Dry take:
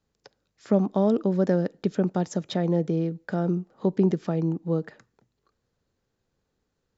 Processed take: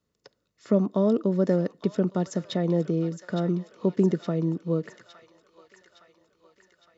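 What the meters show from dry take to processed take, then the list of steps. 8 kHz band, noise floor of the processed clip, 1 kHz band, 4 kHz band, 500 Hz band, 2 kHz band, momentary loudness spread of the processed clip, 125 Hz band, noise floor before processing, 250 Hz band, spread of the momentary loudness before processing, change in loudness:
can't be measured, −77 dBFS, −3.0 dB, +0.5 dB, 0.0 dB, −2.0 dB, 6 LU, −0.5 dB, −78 dBFS, −0.5 dB, 6 LU, −0.5 dB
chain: notch comb filter 800 Hz
delay with a high-pass on its return 863 ms, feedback 57%, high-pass 1,500 Hz, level −7.5 dB

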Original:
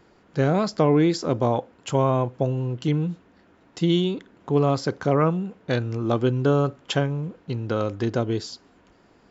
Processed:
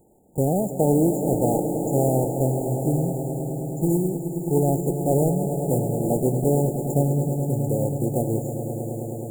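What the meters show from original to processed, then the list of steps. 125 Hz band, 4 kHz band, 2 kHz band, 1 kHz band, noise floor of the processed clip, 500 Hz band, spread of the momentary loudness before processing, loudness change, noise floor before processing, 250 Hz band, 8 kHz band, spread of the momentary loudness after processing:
+2.0 dB, below −40 dB, below −40 dB, −2.0 dB, −32 dBFS, +1.0 dB, 10 LU, +0.5 dB, −58 dBFS, +1.5 dB, can't be measured, 7 LU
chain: one scale factor per block 3 bits
echo that builds up and dies away 106 ms, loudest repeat 5, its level −12 dB
brick-wall band-stop 900–6,800 Hz
level −1 dB

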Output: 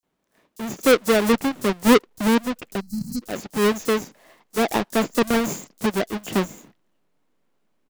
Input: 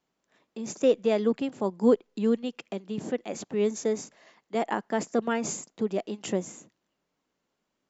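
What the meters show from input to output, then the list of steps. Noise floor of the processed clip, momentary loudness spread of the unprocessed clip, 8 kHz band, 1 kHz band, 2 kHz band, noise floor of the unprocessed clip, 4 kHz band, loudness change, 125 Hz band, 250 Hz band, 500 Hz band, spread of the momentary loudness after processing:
−73 dBFS, 11 LU, can't be measured, +9.0 dB, +13.0 dB, −81 dBFS, +13.0 dB, +6.5 dB, +8.0 dB, +7.0 dB, +4.5 dB, 13 LU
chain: each half-wave held at its own peak
multiband delay without the direct sound highs, lows 30 ms, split 5,500 Hz
in parallel at −8 dB: slack as between gear wheels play −24 dBFS
on the sum: gain on a spectral selection 0:02.80–0:03.22, 260–4,000 Hz −25 dB

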